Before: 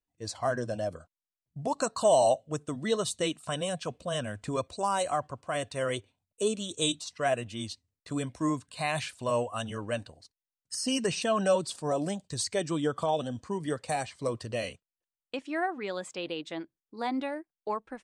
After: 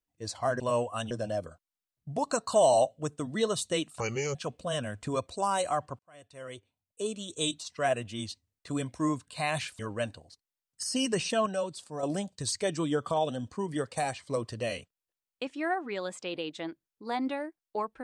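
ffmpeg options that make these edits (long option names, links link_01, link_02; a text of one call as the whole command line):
ffmpeg -i in.wav -filter_complex "[0:a]asplit=9[link_01][link_02][link_03][link_04][link_05][link_06][link_07][link_08][link_09];[link_01]atrim=end=0.602[link_10];[link_02]atrim=start=9.198:end=9.712[link_11];[link_03]atrim=start=0.598:end=3.494[link_12];[link_04]atrim=start=3.49:end=3.76,asetpts=PTS-STARTPTS,asetrate=33957,aresample=44100[link_13];[link_05]atrim=start=3.756:end=5.4,asetpts=PTS-STARTPTS,afade=type=out:start_time=1.64:duration=0.004:curve=hsin[link_14];[link_06]atrim=start=5.4:end=9.202,asetpts=PTS-STARTPTS,afade=type=in:duration=1.89[link_15];[link_07]atrim=start=9.708:end=11.382[link_16];[link_08]atrim=start=11.378:end=11.952,asetpts=PTS-STARTPTS,volume=-7dB[link_17];[link_09]atrim=start=11.948[link_18];[link_10][link_11]acrossfade=duration=0.004:curve1=hsin:curve2=hsin[link_19];[link_19][link_12]acrossfade=duration=0.004:curve1=hsin:curve2=hsin[link_20];[link_20][link_13]acrossfade=duration=0.004:curve1=hsin:curve2=hsin[link_21];[link_14][link_15]concat=n=2:v=0:a=1[link_22];[link_21][link_22]acrossfade=duration=0.004:curve1=hsin:curve2=hsin[link_23];[link_23][link_16]acrossfade=duration=0.004:curve1=hsin:curve2=hsin[link_24];[link_24][link_17]acrossfade=duration=0.004:curve1=hsin:curve2=hsin[link_25];[link_25][link_18]acrossfade=duration=0.004:curve1=hsin:curve2=hsin" out.wav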